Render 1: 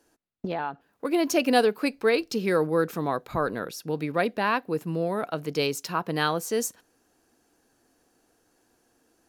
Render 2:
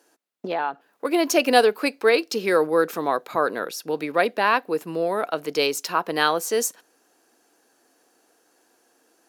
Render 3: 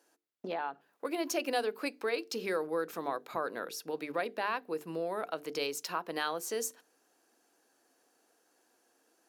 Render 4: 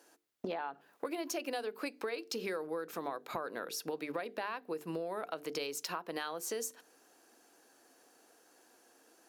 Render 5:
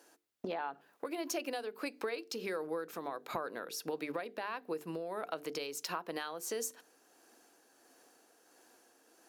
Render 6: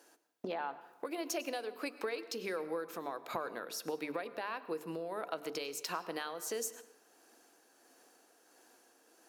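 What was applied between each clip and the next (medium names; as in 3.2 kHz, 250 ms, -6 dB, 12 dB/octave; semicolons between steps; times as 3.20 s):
high-pass 350 Hz 12 dB/octave; trim +5.5 dB
compression 2:1, threshold -25 dBFS, peak gain reduction 8.5 dB; hum notches 50/100/150/200/250/300/350/400/450 Hz; trim -8 dB
compression 6:1, threshold -42 dBFS, peak gain reduction 15 dB; trim +6.5 dB
tremolo 1.5 Hz, depth 31%; trim +1 dB
bass shelf 120 Hz -5.5 dB; on a send at -14.5 dB: reverberation RT60 1.0 s, pre-delay 92 ms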